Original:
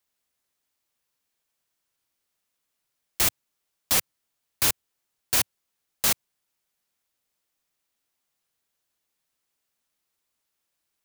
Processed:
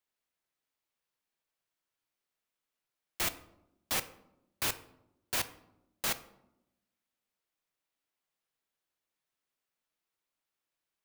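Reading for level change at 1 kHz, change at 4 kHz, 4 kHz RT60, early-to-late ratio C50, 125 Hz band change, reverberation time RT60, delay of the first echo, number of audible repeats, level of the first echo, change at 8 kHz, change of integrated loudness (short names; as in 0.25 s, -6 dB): -6.0 dB, -8.5 dB, 0.50 s, 15.0 dB, -8.5 dB, 0.85 s, none, none, none, -11.5 dB, -10.5 dB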